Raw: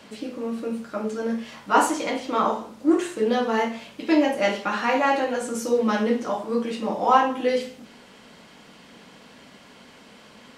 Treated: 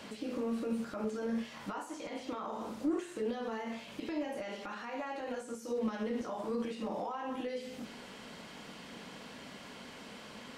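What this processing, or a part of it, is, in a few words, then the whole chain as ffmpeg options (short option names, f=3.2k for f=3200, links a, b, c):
de-esser from a sidechain: -filter_complex "[0:a]asplit=2[a][b];[b]highpass=f=6.2k:p=1,apad=whole_len=466546[c];[a][c]sidechaincompress=threshold=-53dB:ratio=8:attack=0.56:release=59,volume=1dB"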